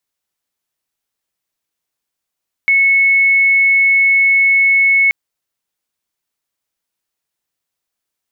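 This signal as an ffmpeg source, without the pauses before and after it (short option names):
-f lavfi -i "sine=f=2200:d=2.43:r=44100,volume=10.06dB"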